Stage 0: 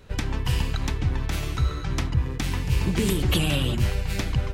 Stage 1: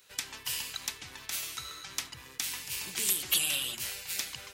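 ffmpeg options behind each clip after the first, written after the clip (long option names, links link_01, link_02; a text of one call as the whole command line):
ffmpeg -i in.wav -af "aderivative,volume=5dB" out.wav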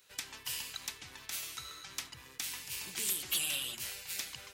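ffmpeg -i in.wav -filter_complex "[0:a]asplit=2[link_01][link_02];[link_02]acrusher=bits=3:mix=0:aa=0.5,volume=-4.5dB[link_03];[link_01][link_03]amix=inputs=2:normalize=0,asoftclip=type=tanh:threshold=-22dB,volume=-4dB" out.wav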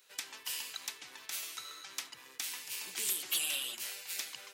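ffmpeg -i in.wav -af "highpass=310" out.wav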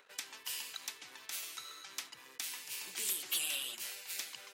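ffmpeg -i in.wav -filter_complex "[0:a]acrossover=split=150|2200[link_01][link_02][link_03];[link_02]acompressor=mode=upward:threshold=-52dB:ratio=2.5[link_04];[link_01][link_04][link_03]amix=inputs=3:normalize=0,anlmdn=0.0000631,volume=-2dB" out.wav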